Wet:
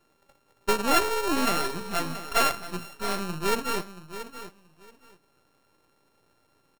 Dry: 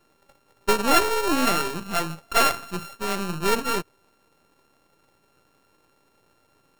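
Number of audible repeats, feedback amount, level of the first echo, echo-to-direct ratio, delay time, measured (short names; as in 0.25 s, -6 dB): 2, 19%, -12.5 dB, -12.5 dB, 0.679 s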